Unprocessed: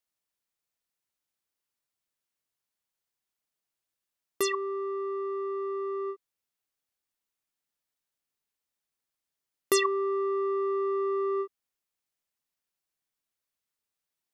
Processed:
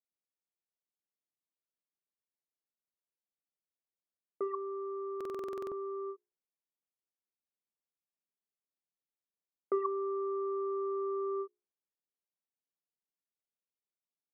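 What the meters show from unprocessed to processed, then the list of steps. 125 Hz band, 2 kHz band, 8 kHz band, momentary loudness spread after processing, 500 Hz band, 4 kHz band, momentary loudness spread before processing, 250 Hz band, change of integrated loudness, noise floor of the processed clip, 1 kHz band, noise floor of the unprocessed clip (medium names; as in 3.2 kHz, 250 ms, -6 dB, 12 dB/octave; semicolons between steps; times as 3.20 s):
no reading, under -20 dB, under -30 dB, 6 LU, -6.5 dB, under -30 dB, 8 LU, -6.0 dB, -7.0 dB, under -85 dBFS, -6.5 dB, under -85 dBFS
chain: elliptic band-pass 170–1200 Hz, stop band 50 dB; level-controlled noise filter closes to 610 Hz, open at -28 dBFS; hum notches 60/120/180/240/300/360/420 Hz; buffer glitch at 5.16 s, samples 2048, times 11; trim -6 dB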